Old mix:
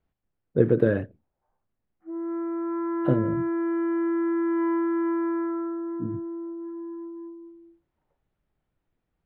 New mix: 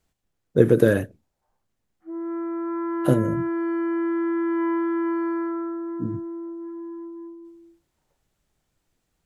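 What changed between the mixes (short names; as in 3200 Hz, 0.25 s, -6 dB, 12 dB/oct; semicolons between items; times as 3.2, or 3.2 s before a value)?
speech +3.0 dB; master: remove air absorption 420 m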